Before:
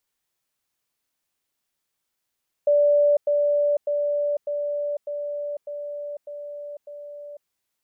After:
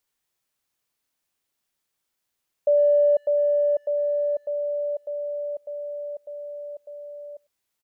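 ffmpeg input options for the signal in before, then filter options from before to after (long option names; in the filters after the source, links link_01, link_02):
-f lavfi -i "aevalsrc='pow(10,(-14.5-3*floor(t/0.6))/20)*sin(2*PI*583*t)*clip(min(mod(t,0.6),0.5-mod(t,0.6))/0.005,0,1)':duration=4.8:sample_rate=44100"
-filter_complex "[0:a]asplit=2[link_01][link_02];[link_02]adelay=100,highpass=300,lowpass=3400,asoftclip=type=hard:threshold=-24.5dB,volume=-29dB[link_03];[link_01][link_03]amix=inputs=2:normalize=0"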